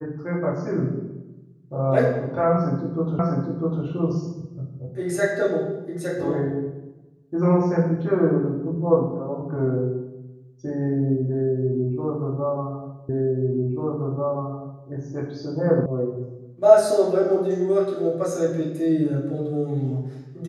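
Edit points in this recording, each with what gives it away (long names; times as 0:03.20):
0:03.19: the same again, the last 0.65 s
0:13.09: the same again, the last 1.79 s
0:15.86: cut off before it has died away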